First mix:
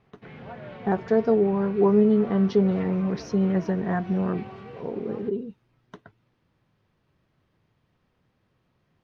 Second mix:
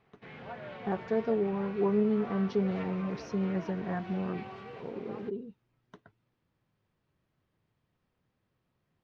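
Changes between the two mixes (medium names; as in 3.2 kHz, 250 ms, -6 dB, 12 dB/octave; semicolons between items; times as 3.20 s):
speech -8.5 dB; background: add bass shelf 390 Hz -8 dB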